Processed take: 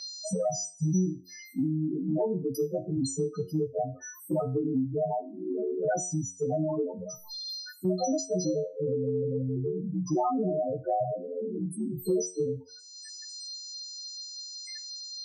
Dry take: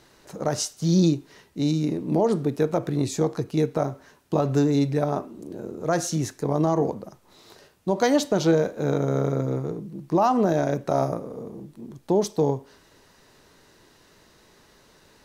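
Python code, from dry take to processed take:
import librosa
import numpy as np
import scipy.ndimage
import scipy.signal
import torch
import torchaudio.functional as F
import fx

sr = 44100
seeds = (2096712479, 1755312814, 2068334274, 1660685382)

y = fx.freq_snap(x, sr, grid_st=3)
y = fx.spec_topn(y, sr, count=4)
y = fx.comb_fb(y, sr, f0_hz=91.0, decay_s=0.3, harmonics='all', damping=0.0, mix_pct=80)
y = fx.band_squash(y, sr, depth_pct=100)
y = y * 10.0 ** (4.0 / 20.0)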